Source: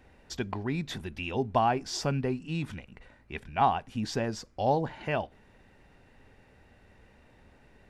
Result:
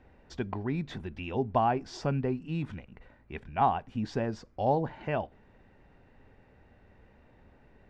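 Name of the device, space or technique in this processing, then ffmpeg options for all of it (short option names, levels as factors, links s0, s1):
through cloth: -af "lowpass=7000,highshelf=f=2800:g=-12"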